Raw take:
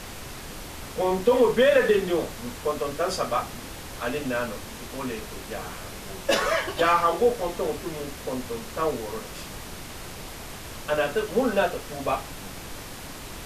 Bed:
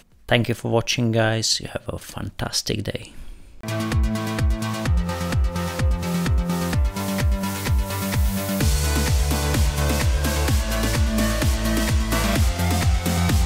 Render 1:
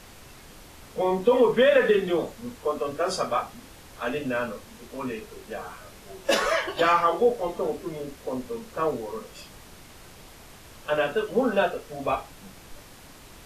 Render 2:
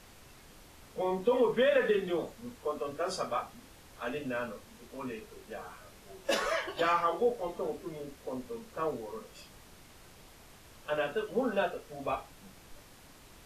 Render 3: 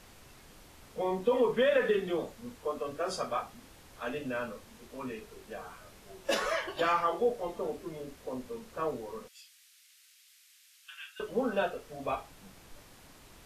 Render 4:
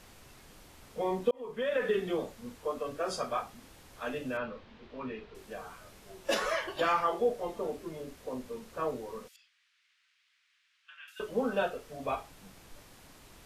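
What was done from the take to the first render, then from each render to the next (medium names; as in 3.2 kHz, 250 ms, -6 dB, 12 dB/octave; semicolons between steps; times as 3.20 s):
noise print and reduce 9 dB
trim -7.5 dB
9.28–11.20 s: Bessel high-pass 2.8 kHz, order 6
1.31–2.02 s: fade in; 4.37–5.35 s: low-pass 4 kHz 24 dB/octave; 9.36–11.08 s: Bessel low-pass 1.9 kHz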